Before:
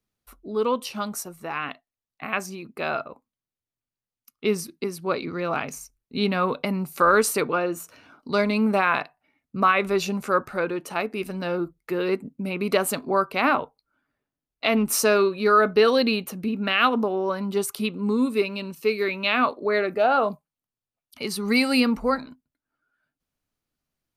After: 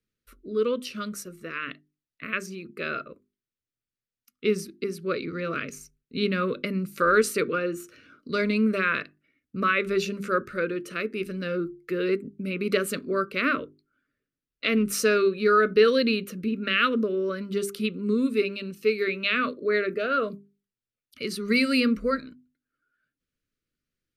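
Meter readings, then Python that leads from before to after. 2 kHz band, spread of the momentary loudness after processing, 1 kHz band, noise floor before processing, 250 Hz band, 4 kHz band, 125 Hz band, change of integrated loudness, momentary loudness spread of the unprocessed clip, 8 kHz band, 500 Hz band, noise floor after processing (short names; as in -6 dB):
-1.0 dB, 13 LU, -6.0 dB, under -85 dBFS, -1.5 dB, -2.5 dB, -2.0 dB, -2.5 dB, 12 LU, -5.5 dB, -1.5 dB, under -85 dBFS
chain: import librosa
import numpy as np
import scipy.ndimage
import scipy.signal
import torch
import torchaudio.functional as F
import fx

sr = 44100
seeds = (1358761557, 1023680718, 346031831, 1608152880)

y = scipy.signal.sosfilt(scipy.signal.cheby1(2, 1.0, [490.0, 1400.0], 'bandstop', fs=sr, output='sos'), x)
y = fx.high_shelf(y, sr, hz=7200.0, db=-8.5)
y = fx.hum_notches(y, sr, base_hz=50, count=8)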